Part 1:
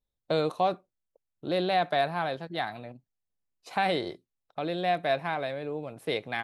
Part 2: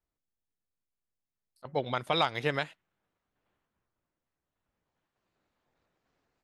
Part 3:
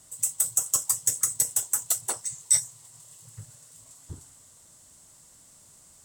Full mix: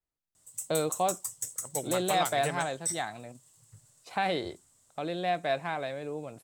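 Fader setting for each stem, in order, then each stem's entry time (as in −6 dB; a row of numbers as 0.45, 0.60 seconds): −2.5, −5.0, −11.5 decibels; 0.40, 0.00, 0.35 seconds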